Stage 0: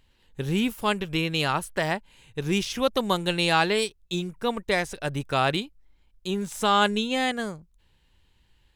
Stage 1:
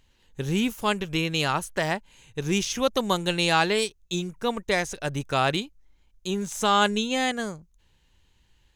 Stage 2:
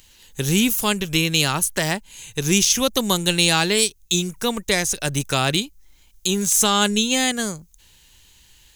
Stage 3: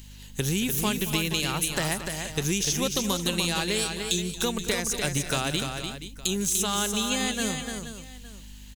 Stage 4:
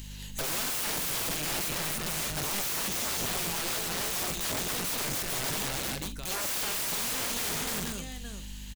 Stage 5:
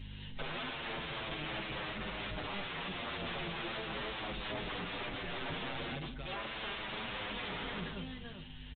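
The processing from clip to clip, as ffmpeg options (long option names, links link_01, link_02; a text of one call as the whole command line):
ffmpeg -i in.wav -af "equalizer=frequency=6400:width_type=o:width=0.3:gain=9" out.wav
ffmpeg -i in.wav -filter_complex "[0:a]acrossover=split=380[link_01][link_02];[link_02]acompressor=threshold=-44dB:ratio=1.5[link_03];[link_01][link_03]amix=inputs=2:normalize=0,crystalizer=i=5.5:c=0,volume=6dB" out.wav
ffmpeg -i in.wav -filter_complex "[0:a]acompressor=threshold=-24dB:ratio=6,aeval=exprs='val(0)+0.00562*(sin(2*PI*50*n/s)+sin(2*PI*2*50*n/s)/2+sin(2*PI*3*50*n/s)/3+sin(2*PI*4*50*n/s)/4+sin(2*PI*5*50*n/s)/5)':channel_layout=same,asplit=2[link_01][link_02];[link_02]aecho=0:1:226|296|477|864:0.178|0.501|0.251|0.1[link_03];[link_01][link_03]amix=inputs=2:normalize=0" out.wav
ffmpeg -i in.wav -filter_complex "[0:a]alimiter=limit=-18dB:level=0:latency=1:release=125,aeval=exprs='(mod(33.5*val(0)+1,2)-1)/33.5':channel_layout=same,asplit=2[link_01][link_02];[link_02]adelay=46,volume=-12dB[link_03];[link_01][link_03]amix=inputs=2:normalize=0,volume=3.5dB" out.wav
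ffmpeg -i in.wav -filter_complex "[0:a]aresample=8000,asoftclip=type=tanh:threshold=-34.5dB,aresample=44100,aecho=1:1:418:0.112,asplit=2[link_01][link_02];[link_02]adelay=8,afreqshift=-0.38[link_03];[link_01][link_03]amix=inputs=2:normalize=1,volume=2dB" out.wav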